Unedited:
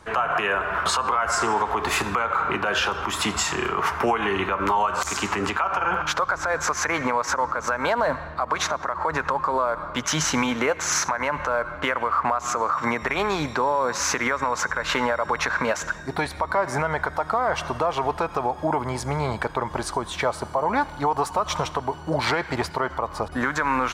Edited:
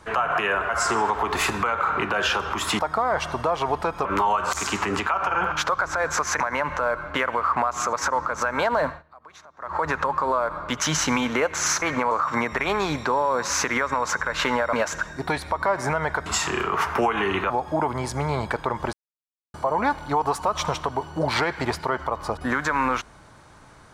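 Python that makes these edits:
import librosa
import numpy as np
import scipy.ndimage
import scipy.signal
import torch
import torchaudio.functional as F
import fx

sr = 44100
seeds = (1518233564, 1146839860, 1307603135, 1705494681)

y = fx.edit(x, sr, fx.cut(start_s=0.69, length_s=0.52),
    fx.swap(start_s=3.31, length_s=1.24, other_s=17.15, other_length_s=1.26),
    fx.swap(start_s=6.9, length_s=0.29, other_s=11.08, other_length_s=1.53),
    fx.fade_down_up(start_s=8.13, length_s=0.87, db=-23.0, fade_s=0.16),
    fx.cut(start_s=15.23, length_s=0.39),
    fx.silence(start_s=19.84, length_s=0.61), tone=tone)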